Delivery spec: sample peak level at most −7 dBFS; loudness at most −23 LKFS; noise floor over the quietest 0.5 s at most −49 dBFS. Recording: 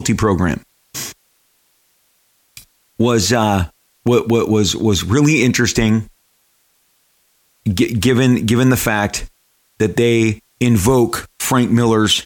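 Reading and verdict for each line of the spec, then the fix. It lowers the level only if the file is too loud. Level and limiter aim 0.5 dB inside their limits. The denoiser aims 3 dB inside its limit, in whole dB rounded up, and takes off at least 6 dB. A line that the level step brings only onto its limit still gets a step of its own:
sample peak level −3.0 dBFS: out of spec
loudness −15.5 LKFS: out of spec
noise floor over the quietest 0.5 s −60 dBFS: in spec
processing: level −8 dB

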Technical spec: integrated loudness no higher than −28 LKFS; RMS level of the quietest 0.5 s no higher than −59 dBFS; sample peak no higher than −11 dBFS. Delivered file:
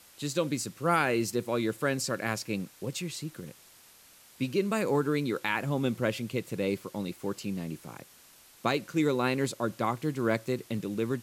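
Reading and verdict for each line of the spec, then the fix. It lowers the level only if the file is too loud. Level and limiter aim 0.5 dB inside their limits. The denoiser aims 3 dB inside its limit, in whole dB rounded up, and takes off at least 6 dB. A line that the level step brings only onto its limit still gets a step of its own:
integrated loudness −31.0 LKFS: in spec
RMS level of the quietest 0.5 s −57 dBFS: out of spec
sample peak −12.5 dBFS: in spec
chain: broadband denoise 6 dB, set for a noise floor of −57 dBFS

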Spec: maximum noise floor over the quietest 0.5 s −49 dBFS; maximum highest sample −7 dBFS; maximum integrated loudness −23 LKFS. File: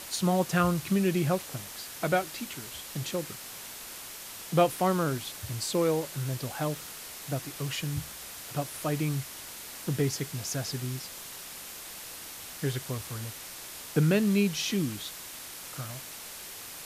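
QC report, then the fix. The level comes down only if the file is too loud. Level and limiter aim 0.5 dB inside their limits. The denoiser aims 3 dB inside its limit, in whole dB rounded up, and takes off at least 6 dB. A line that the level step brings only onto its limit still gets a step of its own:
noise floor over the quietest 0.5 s −43 dBFS: out of spec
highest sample −10.5 dBFS: in spec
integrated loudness −31.5 LKFS: in spec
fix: broadband denoise 9 dB, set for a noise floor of −43 dBFS

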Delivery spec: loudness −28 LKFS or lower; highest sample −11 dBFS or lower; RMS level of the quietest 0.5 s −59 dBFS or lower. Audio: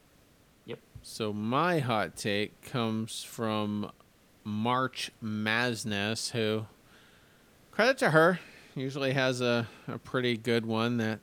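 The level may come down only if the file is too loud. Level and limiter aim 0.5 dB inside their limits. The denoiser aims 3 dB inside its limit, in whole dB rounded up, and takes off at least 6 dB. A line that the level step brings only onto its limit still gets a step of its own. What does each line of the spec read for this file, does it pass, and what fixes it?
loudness −30.0 LKFS: in spec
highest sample −9.0 dBFS: out of spec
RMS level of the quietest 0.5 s −62 dBFS: in spec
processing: brickwall limiter −11.5 dBFS

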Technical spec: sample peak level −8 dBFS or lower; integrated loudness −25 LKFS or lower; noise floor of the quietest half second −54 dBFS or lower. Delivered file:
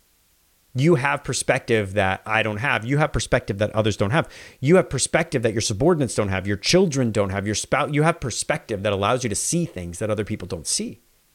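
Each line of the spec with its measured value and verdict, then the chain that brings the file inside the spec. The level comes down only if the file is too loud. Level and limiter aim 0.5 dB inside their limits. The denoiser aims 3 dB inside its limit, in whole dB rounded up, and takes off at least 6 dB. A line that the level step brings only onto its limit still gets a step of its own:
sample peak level −3.5 dBFS: out of spec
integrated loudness −21.5 LKFS: out of spec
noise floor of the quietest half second −61 dBFS: in spec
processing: level −4 dB
brickwall limiter −8.5 dBFS

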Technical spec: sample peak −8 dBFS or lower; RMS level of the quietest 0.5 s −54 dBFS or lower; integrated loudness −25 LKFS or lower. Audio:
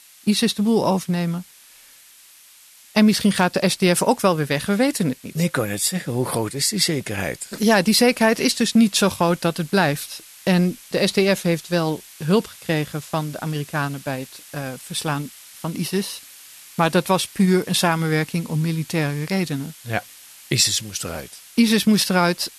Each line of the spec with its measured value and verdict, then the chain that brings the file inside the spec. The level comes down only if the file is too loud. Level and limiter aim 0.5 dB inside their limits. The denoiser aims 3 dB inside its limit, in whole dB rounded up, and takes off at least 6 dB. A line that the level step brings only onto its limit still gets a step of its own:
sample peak −5.5 dBFS: out of spec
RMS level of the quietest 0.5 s −49 dBFS: out of spec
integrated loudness −20.5 LKFS: out of spec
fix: broadband denoise 6 dB, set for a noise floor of −49 dBFS
level −5 dB

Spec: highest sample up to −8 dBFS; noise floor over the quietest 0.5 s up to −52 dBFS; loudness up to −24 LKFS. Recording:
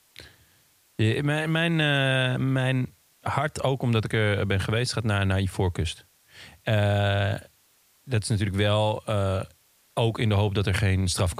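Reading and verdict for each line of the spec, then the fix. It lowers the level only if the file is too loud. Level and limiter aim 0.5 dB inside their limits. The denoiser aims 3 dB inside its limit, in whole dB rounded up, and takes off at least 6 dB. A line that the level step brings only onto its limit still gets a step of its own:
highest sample −9.0 dBFS: in spec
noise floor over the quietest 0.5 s −63 dBFS: in spec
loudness −25.5 LKFS: in spec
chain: no processing needed

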